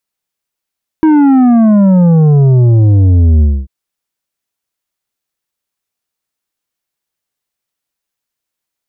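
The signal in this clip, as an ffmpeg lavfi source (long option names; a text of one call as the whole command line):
ffmpeg -f lavfi -i "aevalsrc='0.562*clip((2.64-t)/0.25,0,1)*tanh(2.51*sin(2*PI*320*2.64/log(65/320)*(exp(log(65/320)*t/2.64)-1)))/tanh(2.51)':duration=2.64:sample_rate=44100" out.wav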